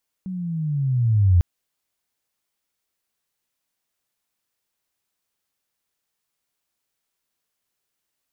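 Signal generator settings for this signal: chirp linear 190 Hz -> 84 Hz -27 dBFS -> -11 dBFS 1.15 s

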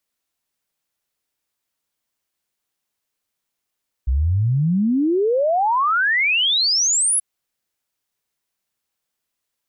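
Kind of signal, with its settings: log sweep 60 Hz -> 11000 Hz 3.13 s -15 dBFS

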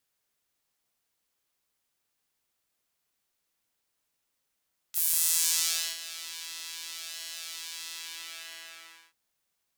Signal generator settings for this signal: synth patch with pulse-width modulation E4, sub -1 dB, filter highpass, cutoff 1700 Hz, Q 1, filter envelope 3 oct, filter decay 0.96 s, attack 31 ms, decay 0.99 s, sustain -23.5 dB, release 1.28 s, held 2.91 s, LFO 0.76 Hz, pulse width 42%, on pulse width 15%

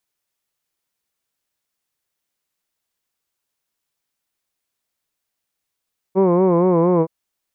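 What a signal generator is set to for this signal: formant-synthesis vowel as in hood, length 0.92 s, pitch 185 Hz, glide -1.5 st, vibrato 4.3 Hz, vibrato depth 0.95 st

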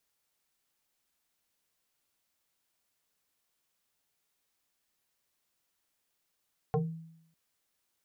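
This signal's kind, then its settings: FM tone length 0.60 s, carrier 163 Hz, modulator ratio 1.84, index 2.5, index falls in 0.28 s exponential, decay 0.76 s, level -23 dB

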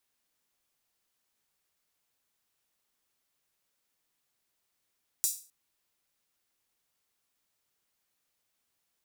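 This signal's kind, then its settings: open hi-hat length 0.26 s, high-pass 6800 Hz, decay 0.37 s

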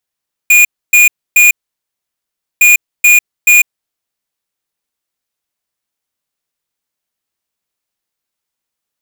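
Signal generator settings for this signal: beep pattern square 2440 Hz, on 0.15 s, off 0.28 s, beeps 3, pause 1.10 s, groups 2, -5.5 dBFS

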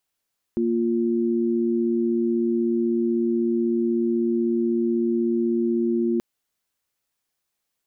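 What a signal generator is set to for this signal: chord A#3/F4 sine, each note -22 dBFS 5.63 s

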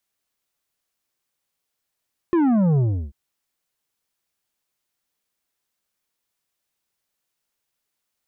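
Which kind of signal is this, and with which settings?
sub drop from 360 Hz, over 0.79 s, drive 8.5 dB, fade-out 0.34 s, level -16 dB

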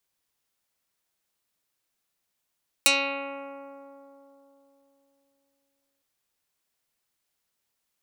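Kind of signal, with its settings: plucked string C#4, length 3.16 s, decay 3.70 s, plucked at 0.17, dark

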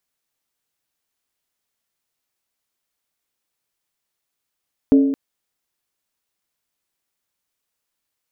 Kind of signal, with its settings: skin hit length 0.22 s, lowest mode 274 Hz, decay 0.99 s, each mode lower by 10 dB, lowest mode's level -7 dB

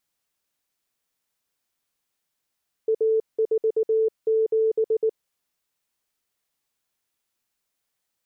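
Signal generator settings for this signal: Morse "A47" 19 wpm 442 Hz -17.5 dBFS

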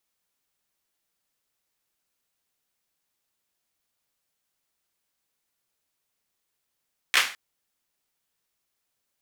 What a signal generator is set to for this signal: hand clap length 0.21 s, bursts 3, apart 14 ms, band 2000 Hz, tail 0.37 s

